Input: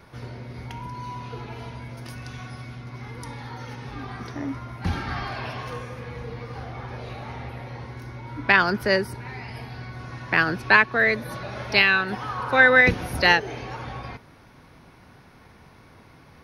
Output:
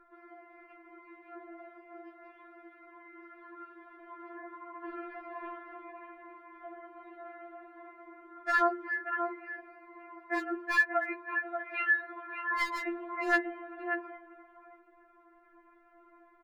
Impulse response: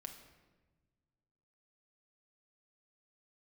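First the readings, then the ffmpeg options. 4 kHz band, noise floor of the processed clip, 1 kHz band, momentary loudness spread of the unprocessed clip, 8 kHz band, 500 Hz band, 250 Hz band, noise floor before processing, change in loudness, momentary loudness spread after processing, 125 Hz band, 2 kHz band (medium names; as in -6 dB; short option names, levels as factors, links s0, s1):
-21.0 dB, -62 dBFS, -8.5 dB, 20 LU, no reading, -11.5 dB, -9.5 dB, -51 dBFS, -11.5 dB, 23 LU, under -40 dB, -11.5 dB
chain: -filter_complex "[0:a]lowpass=f=1800:w=0.5412,lowpass=f=1800:w=1.3066,lowshelf=f=96:g=-7,bandreject=f=50:t=h:w=6,bandreject=f=100:t=h:w=6,bandreject=f=150:t=h:w=6,bandreject=f=200:t=h:w=6,bandreject=f=250:t=h:w=6,bandreject=f=300:t=h:w=6,bandreject=f=350:t=h:w=6,bandreject=f=400:t=h:w=6,asplit=2[s0][s1];[s1]adelay=583.1,volume=0.501,highshelf=f=4000:g=-13.1[s2];[s0][s2]amix=inputs=2:normalize=0,volume=3.55,asoftclip=hard,volume=0.282,afftfilt=real='re*4*eq(mod(b,16),0)':imag='im*4*eq(mod(b,16),0)':win_size=2048:overlap=0.75,volume=0.562"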